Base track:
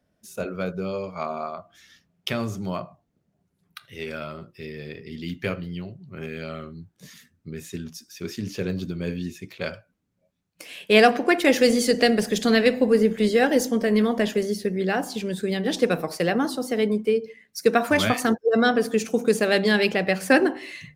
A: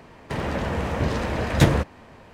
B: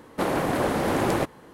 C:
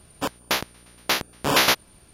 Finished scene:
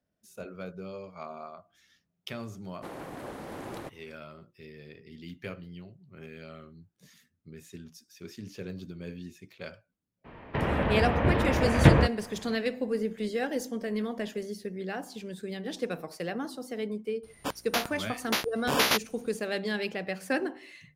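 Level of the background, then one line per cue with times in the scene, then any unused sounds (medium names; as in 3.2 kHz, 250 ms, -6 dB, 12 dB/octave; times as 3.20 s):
base track -11.5 dB
2.64 s: add B -16.5 dB
10.24 s: add A -0.5 dB, fades 0.02 s + low-pass 3.2 kHz 24 dB/octave
17.23 s: add C -6.5 dB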